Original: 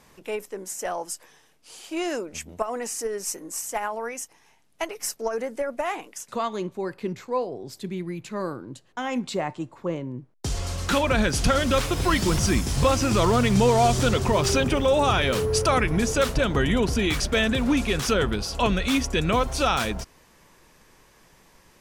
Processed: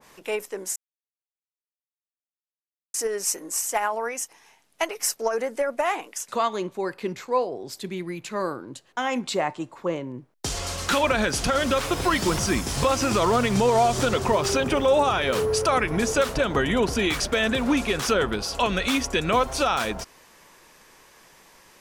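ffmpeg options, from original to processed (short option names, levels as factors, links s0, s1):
-filter_complex "[0:a]asplit=3[s0][s1][s2];[s0]atrim=end=0.76,asetpts=PTS-STARTPTS,afade=t=out:st=0.756:d=0.004:c=hsin[s3];[s1]atrim=start=0.76:end=2.94,asetpts=PTS-STARTPTS,volume=0[s4];[s2]atrim=start=2.94,asetpts=PTS-STARTPTS,afade=t=in:d=0.004:c=hsin[s5];[s3][s4][s5]concat=n=3:v=0:a=1,lowshelf=f=250:g=-12,alimiter=limit=0.158:level=0:latency=1:release=91,adynamicequalizer=threshold=0.0126:dfrequency=1700:dqfactor=0.7:tfrequency=1700:tqfactor=0.7:attack=5:release=100:ratio=0.375:range=2.5:mode=cutabove:tftype=highshelf,volume=1.78"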